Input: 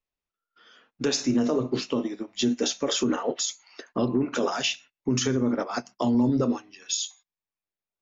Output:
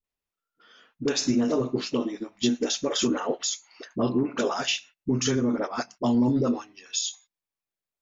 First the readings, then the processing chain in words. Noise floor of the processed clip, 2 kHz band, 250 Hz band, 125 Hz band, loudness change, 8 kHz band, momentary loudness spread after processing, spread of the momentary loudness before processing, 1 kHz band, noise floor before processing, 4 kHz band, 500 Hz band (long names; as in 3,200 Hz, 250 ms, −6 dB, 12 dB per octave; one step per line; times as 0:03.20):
below −85 dBFS, 0.0 dB, 0.0 dB, 0.0 dB, 0.0 dB, can't be measured, 8 LU, 8 LU, 0.0 dB, below −85 dBFS, 0.0 dB, 0.0 dB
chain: all-pass dispersion highs, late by 42 ms, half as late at 570 Hz